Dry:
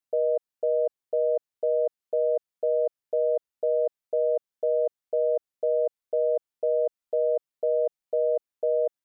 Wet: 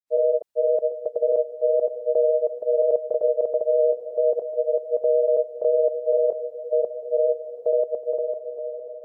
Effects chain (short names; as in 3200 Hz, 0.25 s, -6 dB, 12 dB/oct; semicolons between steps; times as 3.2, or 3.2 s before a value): ending faded out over 1.46 s; grains, pitch spread up and down by 0 st; diffused feedback echo 0.703 s, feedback 43%, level -12 dB; gain +5.5 dB